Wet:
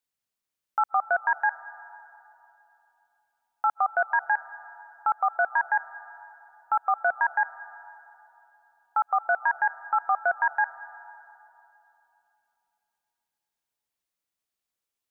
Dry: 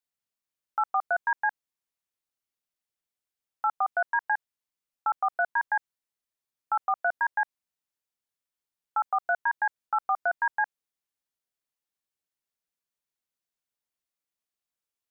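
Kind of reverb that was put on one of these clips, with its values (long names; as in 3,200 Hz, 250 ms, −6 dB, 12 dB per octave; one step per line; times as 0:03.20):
comb and all-pass reverb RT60 3.1 s, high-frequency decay 0.55×, pre-delay 110 ms, DRR 16 dB
level +2.5 dB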